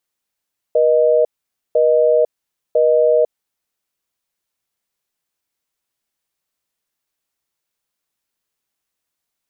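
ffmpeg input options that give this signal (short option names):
-f lavfi -i "aevalsrc='0.224*(sin(2*PI*480*t)+sin(2*PI*620*t))*clip(min(mod(t,1),0.5-mod(t,1))/0.005,0,1)':d=2.96:s=44100"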